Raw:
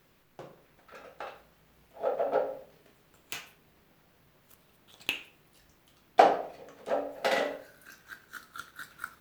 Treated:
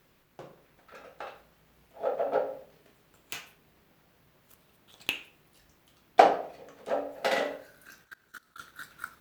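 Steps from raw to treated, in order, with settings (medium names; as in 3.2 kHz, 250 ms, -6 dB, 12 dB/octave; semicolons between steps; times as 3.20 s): Chebyshev shaper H 7 -30 dB, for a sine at -3 dBFS; 8.04–8.60 s: level held to a coarse grid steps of 23 dB; trim +2 dB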